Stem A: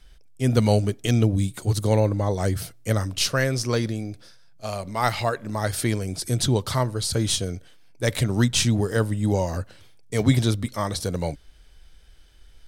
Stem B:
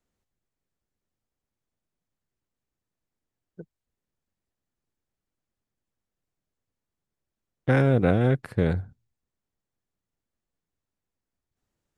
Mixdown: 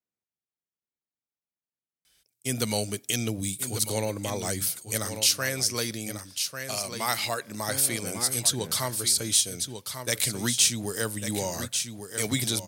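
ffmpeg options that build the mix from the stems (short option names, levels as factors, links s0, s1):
-filter_complex "[0:a]agate=range=0.355:threshold=0.01:ratio=16:detection=peak,crystalizer=i=6:c=0,adelay=2050,volume=0.531,asplit=2[s0][s1];[s1]volume=0.282[s2];[1:a]volume=0.2[s3];[s2]aecho=0:1:1145:1[s4];[s0][s3][s4]amix=inputs=3:normalize=0,highpass=130,equalizer=f=2300:t=o:w=0.27:g=3,acompressor=threshold=0.0316:ratio=1.5"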